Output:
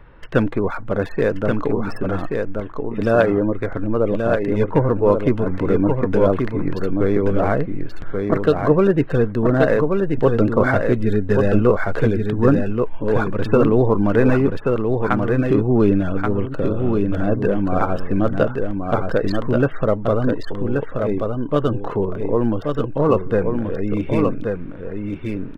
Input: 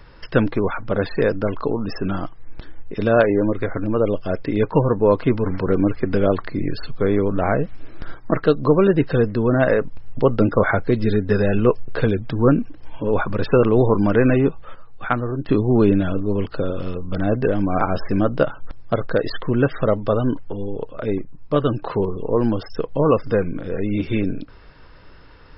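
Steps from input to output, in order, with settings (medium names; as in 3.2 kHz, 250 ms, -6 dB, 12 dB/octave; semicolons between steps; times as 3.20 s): local Wiener filter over 9 samples; on a send: delay 1130 ms -4.5 dB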